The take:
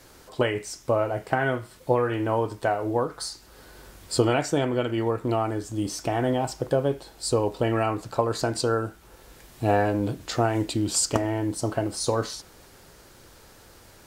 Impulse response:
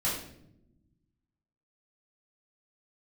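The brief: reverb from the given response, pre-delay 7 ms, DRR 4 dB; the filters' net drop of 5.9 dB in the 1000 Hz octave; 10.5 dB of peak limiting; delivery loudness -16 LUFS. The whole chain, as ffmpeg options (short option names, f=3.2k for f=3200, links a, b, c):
-filter_complex "[0:a]equalizer=f=1k:t=o:g=-9,alimiter=limit=-19dB:level=0:latency=1,asplit=2[a][b];[1:a]atrim=start_sample=2205,adelay=7[c];[b][c]afir=irnorm=-1:irlink=0,volume=-12dB[d];[a][d]amix=inputs=2:normalize=0,volume=12dB"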